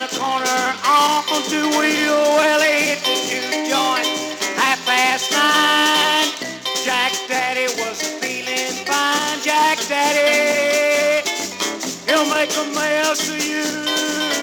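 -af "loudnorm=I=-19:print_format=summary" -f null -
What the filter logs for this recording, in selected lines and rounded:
Input Integrated:    -17.3 LUFS
Input True Peak:      -3.5 dBTP
Input LRA:             2.6 LU
Input Threshold:     -27.3 LUFS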